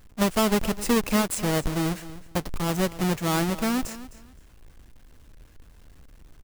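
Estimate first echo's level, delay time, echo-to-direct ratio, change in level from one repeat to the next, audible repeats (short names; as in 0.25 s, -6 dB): -16.0 dB, 0.259 s, -16.0 dB, -13.0 dB, 2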